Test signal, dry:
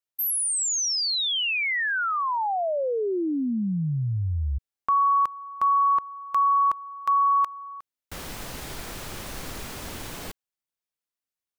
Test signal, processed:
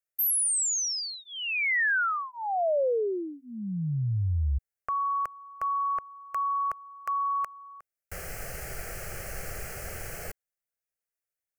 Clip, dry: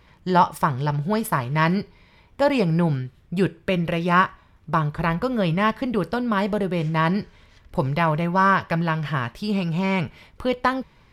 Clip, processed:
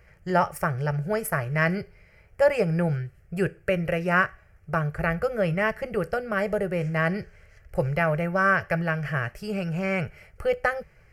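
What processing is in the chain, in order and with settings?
fixed phaser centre 990 Hz, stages 6; gain +1 dB

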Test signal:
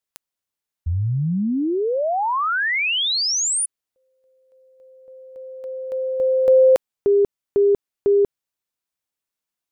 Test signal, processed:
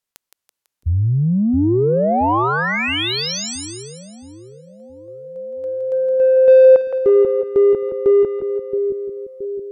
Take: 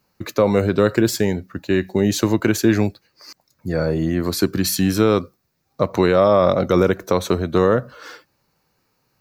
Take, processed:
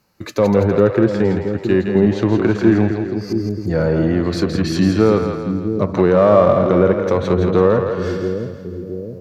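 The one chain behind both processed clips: treble ducked by the level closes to 1700 Hz, closed at -13.5 dBFS; in parallel at -5 dB: soft clip -19.5 dBFS; on the sum: split-band echo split 430 Hz, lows 0.672 s, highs 0.166 s, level -6 dB; harmonic-percussive split harmonic +6 dB; gain -4 dB

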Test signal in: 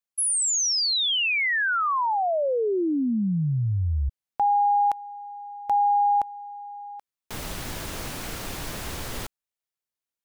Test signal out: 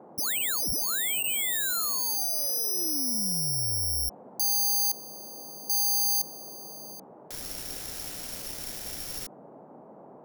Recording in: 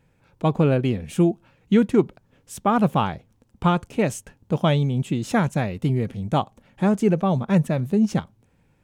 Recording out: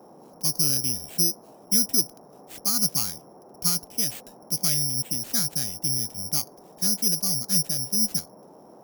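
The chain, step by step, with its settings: careless resampling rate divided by 8×, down none, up zero stuff; band shelf 640 Hz -9 dB; band noise 150–840 Hz -36 dBFS; gain -13.5 dB

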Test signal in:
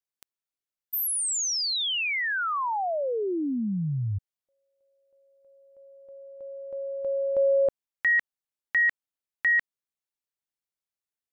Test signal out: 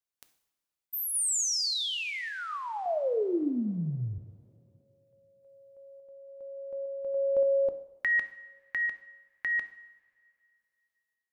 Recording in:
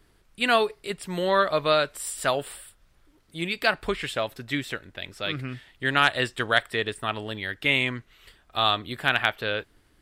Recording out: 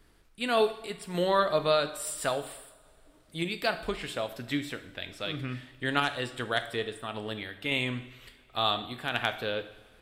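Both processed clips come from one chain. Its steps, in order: dynamic EQ 1900 Hz, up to -6 dB, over -36 dBFS, Q 0.96; random-step tremolo 3.5 Hz; two-slope reverb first 0.73 s, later 2.8 s, from -18 dB, DRR 8.5 dB

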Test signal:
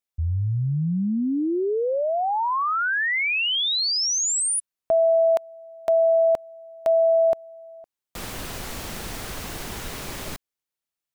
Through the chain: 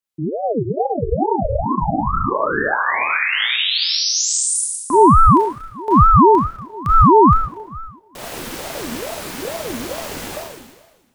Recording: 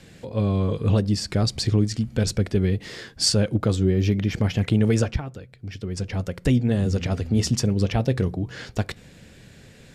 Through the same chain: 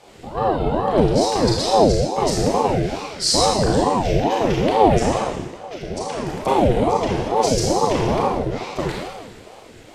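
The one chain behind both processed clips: Schroeder reverb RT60 1.3 s, combs from 26 ms, DRR -4.5 dB; ring modulator with a swept carrier 450 Hz, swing 50%, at 2.3 Hz; gain +1.5 dB

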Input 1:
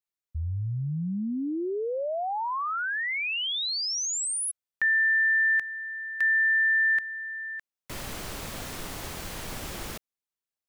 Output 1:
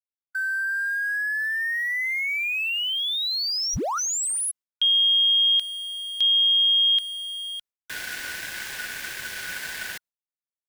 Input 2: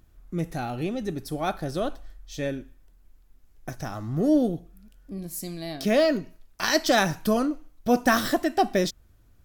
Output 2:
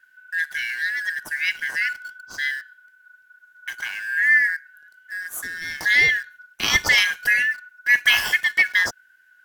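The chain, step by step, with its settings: four-band scrambler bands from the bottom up 4123; in parallel at -6 dB: sample gate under -35 dBFS; on the sum: gate with hold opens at -51 dBFS

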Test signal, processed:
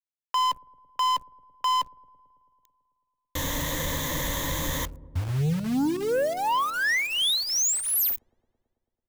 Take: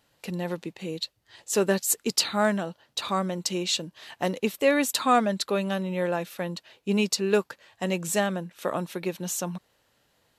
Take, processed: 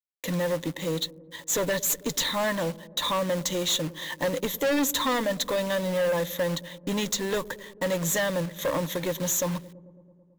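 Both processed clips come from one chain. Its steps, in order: one diode to ground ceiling -15 dBFS; gate -53 dBFS, range -21 dB; ripple EQ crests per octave 1.1, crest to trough 15 dB; in parallel at -2 dB: compressor 8:1, threshold -30 dBFS; on the sum: companded quantiser 4-bit; overloaded stage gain 22 dB; on a send: dark delay 0.11 s, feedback 74%, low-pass 440 Hz, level -16 dB

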